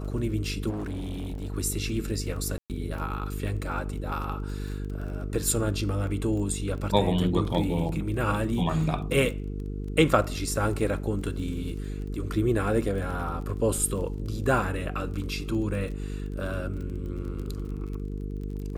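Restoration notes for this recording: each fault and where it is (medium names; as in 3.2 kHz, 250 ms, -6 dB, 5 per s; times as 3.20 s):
buzz 50 Hz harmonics 9 -33 dBFS
crackle 25 per s -36 dBFS
0.69–1.54 s: clipped -29.5 dBFS
2.58–2.70 s: dropout 118 ms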